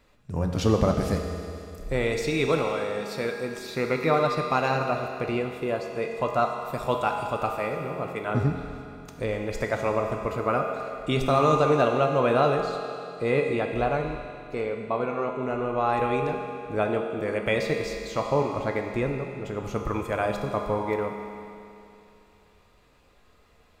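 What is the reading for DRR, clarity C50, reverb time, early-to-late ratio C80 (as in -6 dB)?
2.0 dB, 3.5 dB, 2.7 s, 4.5 dB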